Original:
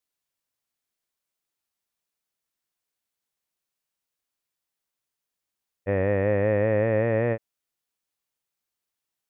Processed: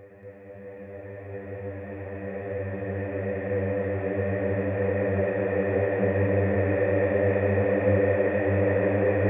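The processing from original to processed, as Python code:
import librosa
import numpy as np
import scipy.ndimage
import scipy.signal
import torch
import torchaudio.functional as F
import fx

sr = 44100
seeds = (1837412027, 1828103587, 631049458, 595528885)

y = fx.paulstretch(x, sr, seeds[0], factor=14.0, window_s=1.0, from_s=5.52)
y = y + 10.0 ** (-5.5 / 20.0) * np.pad(y, (int(231 * sr / 1000.0), 0))[:len(y)]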